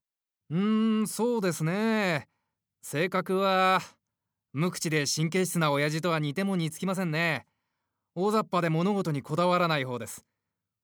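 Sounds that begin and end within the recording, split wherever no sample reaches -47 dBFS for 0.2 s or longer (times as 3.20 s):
0.50–2.23 s
2.84–3.91 s
4.54–7.42 s
8.16–10.20 s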